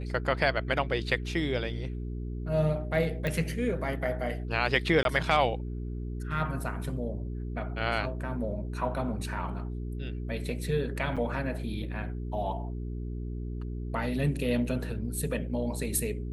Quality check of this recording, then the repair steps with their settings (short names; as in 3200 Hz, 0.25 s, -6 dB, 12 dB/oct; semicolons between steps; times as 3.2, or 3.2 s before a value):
hum 60 Hz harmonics 7 -35 dBFS
3.27 pop -18 dBFS
5.03–5.05 gap 22 ms
11.16–11.17 gap 6.6 ms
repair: de-click; de-hum 60 Hz, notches 7; interpolate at 5.03, 22 ms; interpolate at 11.16, 6.6 ms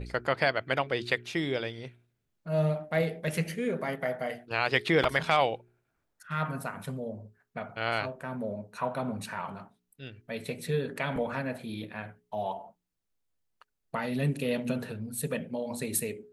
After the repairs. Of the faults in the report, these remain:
none